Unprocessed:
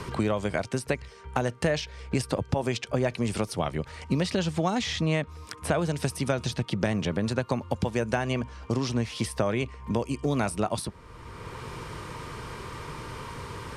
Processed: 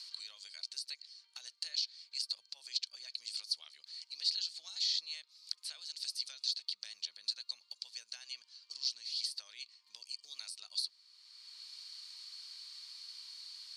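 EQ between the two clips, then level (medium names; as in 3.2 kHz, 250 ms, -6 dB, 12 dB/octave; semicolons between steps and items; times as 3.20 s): band-pass filter 4.4 kHz, Q 13; differentiator; +16.0 dB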